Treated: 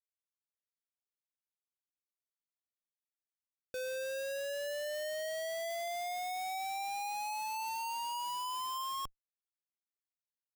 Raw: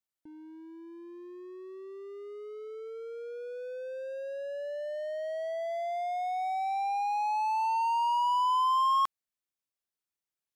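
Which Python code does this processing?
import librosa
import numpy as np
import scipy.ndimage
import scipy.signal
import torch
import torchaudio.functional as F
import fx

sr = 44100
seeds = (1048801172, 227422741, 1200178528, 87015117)

y = fx.cheby_harmonics(x, sr, harmonics=(5,), levels_db=(-45,), full_scale_db=-20.0)
y = fx.filter_sweep_highpass(y, sr, from_hz=770.0, to_hz=360.0, start_s=3.57, end_s=4.85, q=3.3)
y = fx.schmitt(y, sr, flips_db=-35.0)
y = F.gain(torch.from_numpy(y), -7.0).numpy()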